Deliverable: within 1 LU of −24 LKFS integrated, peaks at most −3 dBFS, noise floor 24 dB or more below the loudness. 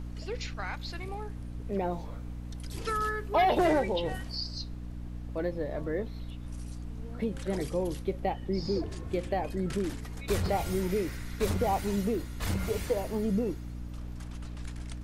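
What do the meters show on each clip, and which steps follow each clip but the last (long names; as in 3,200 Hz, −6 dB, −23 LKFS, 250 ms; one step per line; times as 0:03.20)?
mains hum 60 Hz; hum harmonics up to 300 Hz; level of the hum −37 dBFS; background noise floor −40 dBFS; target noise floor −57 dBFS; integrated loudness −33.0 LKFS; sample peak −14.5 dBFS; target loudness −24.0 LKFS
→ hum removal 60 Hz, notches 5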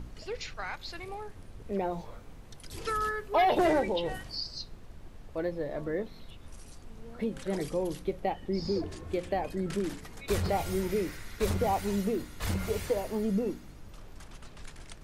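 mains hum none found; background noise floor −49 dBFS; target noise floor −57 dBFS
→ noise reduction from a noise print 8 dB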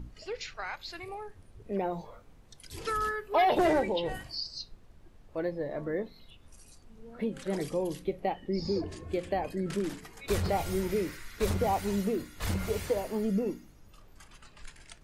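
background noise floor −57 dBFS; integrated loudness −32.5 LKFS; sample peak −15.5 dBFS; target loudness −24.0 LKFS
→ level +8.5 dB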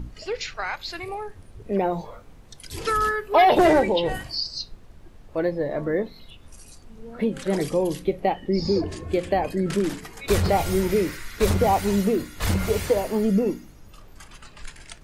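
integrated loudness −24.0 LKFS; sample peak −7.0 dBFS; background noise floor −48 dBFS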